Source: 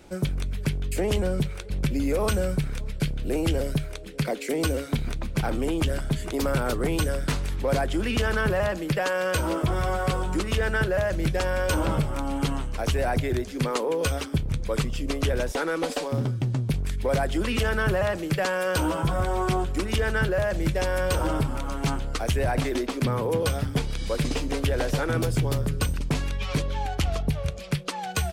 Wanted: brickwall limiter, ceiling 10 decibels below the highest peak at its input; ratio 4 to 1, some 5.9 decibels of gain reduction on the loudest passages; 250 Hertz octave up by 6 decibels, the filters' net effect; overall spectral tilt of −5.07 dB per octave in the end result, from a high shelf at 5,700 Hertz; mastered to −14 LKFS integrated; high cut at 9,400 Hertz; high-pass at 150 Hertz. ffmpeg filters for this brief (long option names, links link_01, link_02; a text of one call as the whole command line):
ffmpeg -i in.wav -af "highpass=150,lowpass=9400,equalizer=frequency=250:width_type=o:gain=9,highshelf=frequency=5700:gain=8,acompressor=threshold=-25dB:ratio=4,volume=18dB,alimiter=limit=-5dB:level=0:latency=1" out.wav